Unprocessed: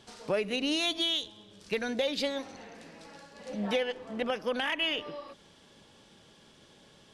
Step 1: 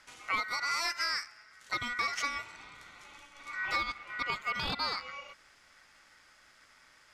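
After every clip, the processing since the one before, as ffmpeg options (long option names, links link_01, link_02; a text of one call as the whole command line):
ffmpeg -i in.wav -af "aeval=exprs='val(0)*sin(2*PI*1700*n/s)':channel_layout=same" out.wav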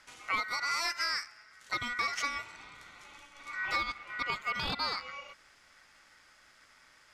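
ffmpeg -i in.wav -af anull out.wav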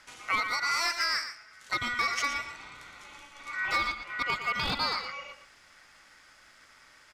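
ffmpeg -i in.wav -filter_complex "[0:a]volume=22.5dB,asoftclip=hard,volume=-22.5dB,asplit=2[link_01][link_02];[link_02]aecho=0:1:116:0.335[link_03];[link_01][link_03]amix=inputs=2:normalize=0,volume=3.5dB" out.wav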